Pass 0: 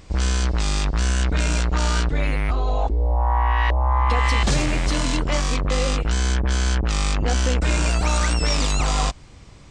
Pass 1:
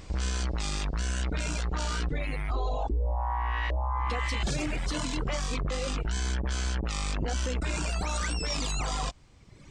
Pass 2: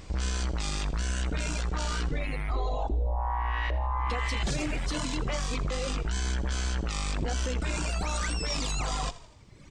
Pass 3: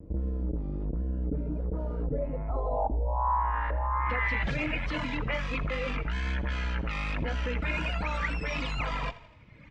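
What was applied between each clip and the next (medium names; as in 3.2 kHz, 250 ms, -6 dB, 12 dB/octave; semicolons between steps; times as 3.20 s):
reverb removal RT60 1.1 s; peak limiter -21.5 dBFS, peak gain reduction 10.5 dB
frequency-shifting echo 82 ms, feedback 55%, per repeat -35 Hz, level -16.5 dB
comb of notches 380 Hz; low-pass sweep 380 Hz -> 2.3 kHz, 1.48–4.51 s; vibrato 1.3 Hz 52 cents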